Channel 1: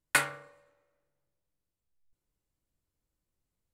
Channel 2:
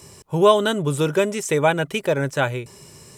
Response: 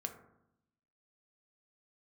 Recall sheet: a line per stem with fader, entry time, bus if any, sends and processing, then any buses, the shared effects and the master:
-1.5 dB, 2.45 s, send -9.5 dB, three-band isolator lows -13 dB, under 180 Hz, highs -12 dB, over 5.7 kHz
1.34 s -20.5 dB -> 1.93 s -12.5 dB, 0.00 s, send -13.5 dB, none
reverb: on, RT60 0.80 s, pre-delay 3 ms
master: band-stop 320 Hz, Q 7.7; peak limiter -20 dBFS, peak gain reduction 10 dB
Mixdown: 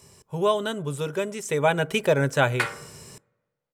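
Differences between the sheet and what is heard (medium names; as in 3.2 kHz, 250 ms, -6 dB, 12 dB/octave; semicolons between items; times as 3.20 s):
stem 2 -20.5 dB -> -9.0 dB; master: missing peak limiter -20 dBFS, peak gain reduction 10 dB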